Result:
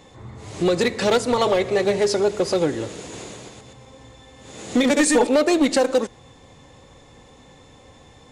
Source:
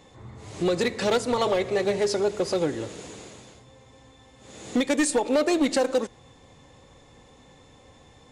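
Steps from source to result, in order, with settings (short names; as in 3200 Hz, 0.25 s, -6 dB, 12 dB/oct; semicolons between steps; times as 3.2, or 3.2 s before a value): 3–5.27 reverse delay 0.122 s, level -2 dB; gain +4.5 dB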